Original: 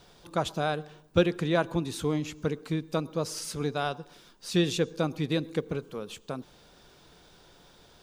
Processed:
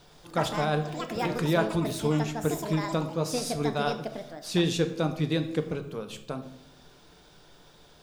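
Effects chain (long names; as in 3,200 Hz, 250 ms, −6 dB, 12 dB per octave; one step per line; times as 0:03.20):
0:00.58–0:01.45: compressor whose output falls as the input rises −30 dBFS, ratio −1
delay with pitch and tempo change per echo 115 ms, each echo +6 semitones, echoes 2, each echo −6 dB
rectangular room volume 200 cubic metres, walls mixed, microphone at 0.42 metres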